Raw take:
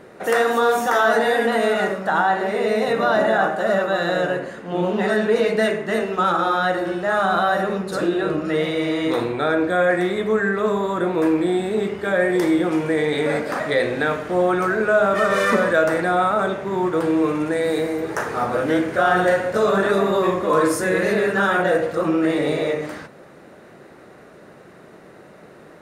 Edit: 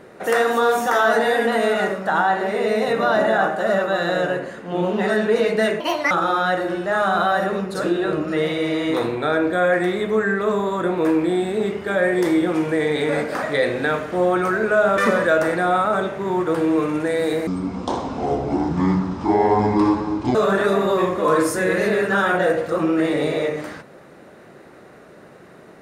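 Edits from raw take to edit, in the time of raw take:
5.80–6.28 s: speed 155%
15.15–15.44 s: delete
17.93–19.60 s: speed 58%

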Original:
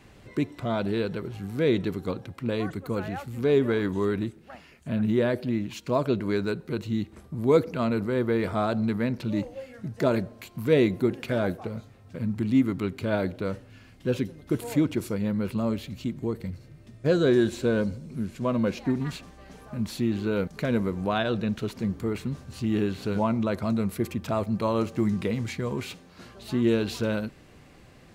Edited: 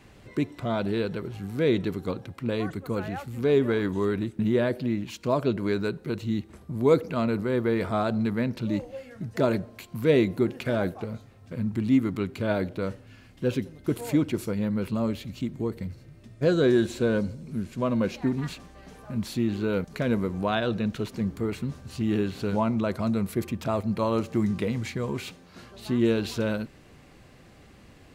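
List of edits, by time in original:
4.39–5.02 s: delete

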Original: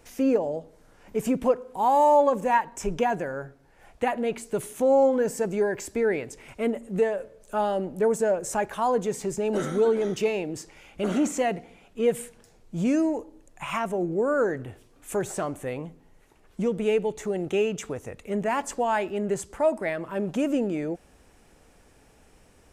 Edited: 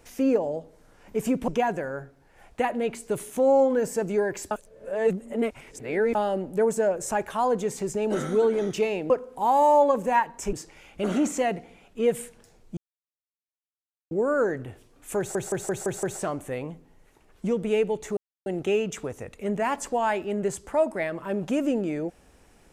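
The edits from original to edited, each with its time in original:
1.48–2.91 s: move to 10.53 s
5.94–7.58 s: reverse
12.77–14.11 s: mute
15.18 s: stutter 0.17 s, 6 plays
17.32 s: insert silence 0.29 s

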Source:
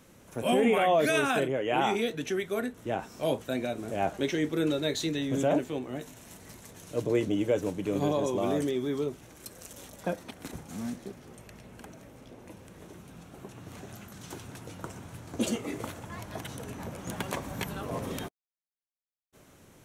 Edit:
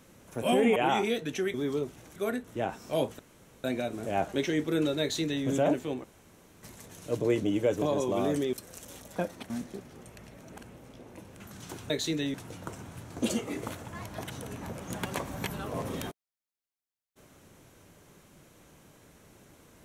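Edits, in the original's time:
0.76–1.68 s: delete
3.49 s: insert room tone 0.45 s
4.86–5.30 s: copy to 14.51 s
5.89–6.48 s: room tone
7.67–8.08 s: delete
8.79–9.41 s: move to 2.46 s
10.38–10.82 s: delete
11.66–12.08 s: reverse
12.72–14.01 s: delete

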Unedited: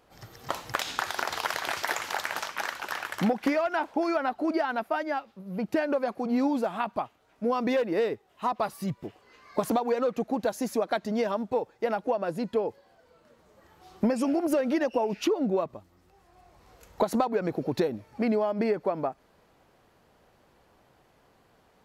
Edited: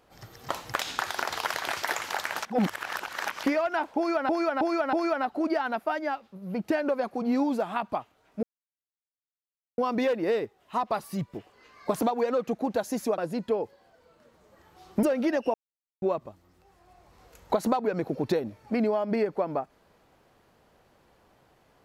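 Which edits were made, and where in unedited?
2.45–3.43 s: reverse
3.97–4.29 s: loop, 4 plays
7.47 s: insert silence 1.35 s
10.87–12.23 s: delete
14.08–14.51 s: delete
15.02–15.50 s: mute

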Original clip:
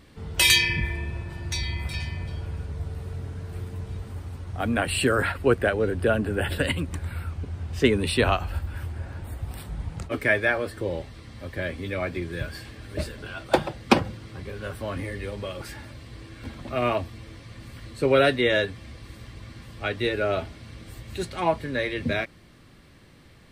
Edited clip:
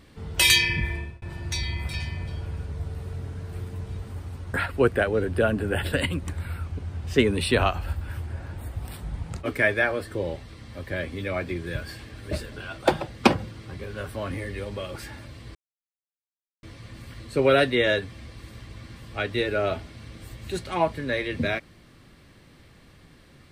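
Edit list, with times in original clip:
0.96–1.22 s: fade out
4.54–5.20 s: delete
16.21–17.29 s: mute

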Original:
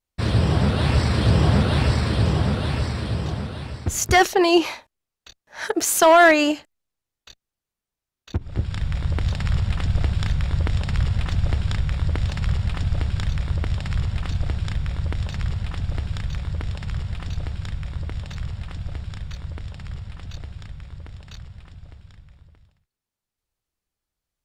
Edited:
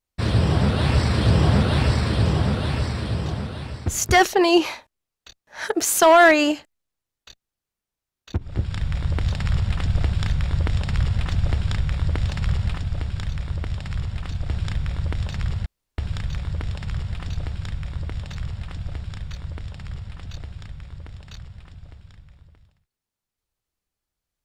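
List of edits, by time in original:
12.77–14.50 s: gain -3.5 dB
15.66–15.98 s: room tone

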